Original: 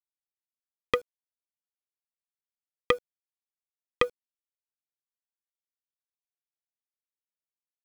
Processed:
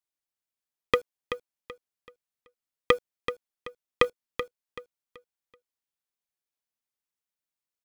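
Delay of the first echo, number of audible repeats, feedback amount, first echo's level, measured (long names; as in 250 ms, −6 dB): 381 ms, 3, 32%, −10.0 dB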